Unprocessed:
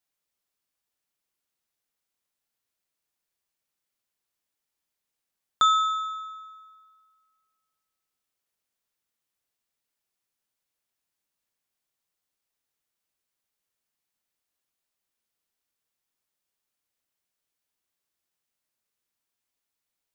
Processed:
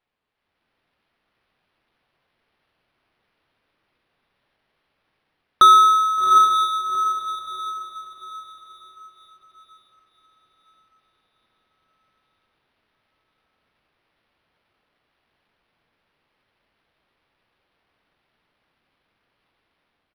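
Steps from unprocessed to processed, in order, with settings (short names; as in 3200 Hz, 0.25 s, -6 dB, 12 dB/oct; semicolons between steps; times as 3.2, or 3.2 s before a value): comb 1.7 ms, depth 96%; AGC gain up to 9 dB; diffused feedback echo 0.771 s, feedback 40%, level -4 dB; on a send at -14 dB: reverb RT60 0.70 s, pre-delay 4 ms; on the sum: decimation joined by straight lines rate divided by 6×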